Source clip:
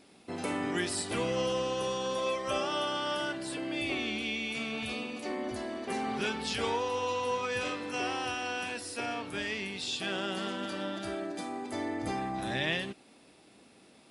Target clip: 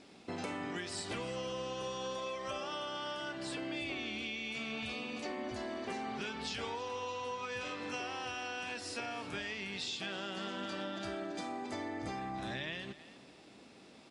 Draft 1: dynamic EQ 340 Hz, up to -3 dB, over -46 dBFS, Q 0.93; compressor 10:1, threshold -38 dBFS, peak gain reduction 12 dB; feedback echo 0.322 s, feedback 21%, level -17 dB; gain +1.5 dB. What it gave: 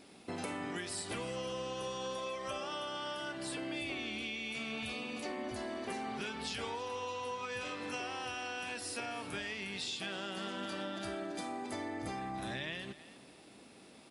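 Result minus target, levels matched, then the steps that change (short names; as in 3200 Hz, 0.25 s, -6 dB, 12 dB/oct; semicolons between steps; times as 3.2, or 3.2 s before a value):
8000 Hz band +2.5 dB
add after dynamic EQ: LPF 7700 Hz 24 dB/oct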